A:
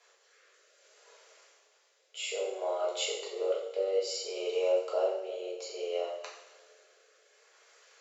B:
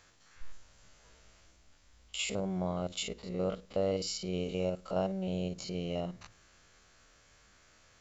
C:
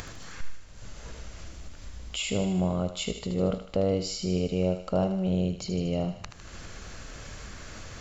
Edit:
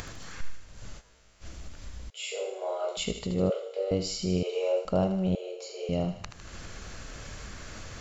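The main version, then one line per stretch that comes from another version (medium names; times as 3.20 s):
C
0.99–1.43 s: from B, crossfade 0.06 s
2.10–2.97 s: from A
3.50–3.91 s: from A
4.43–4.85 s: from A
5.35–5.89 s: from A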